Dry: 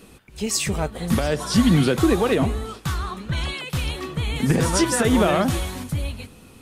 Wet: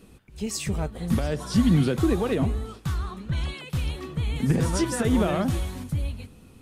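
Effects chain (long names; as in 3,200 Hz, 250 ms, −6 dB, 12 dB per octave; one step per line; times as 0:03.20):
low-shelf EQ 320 Hz +8 dB
level −8.5 dB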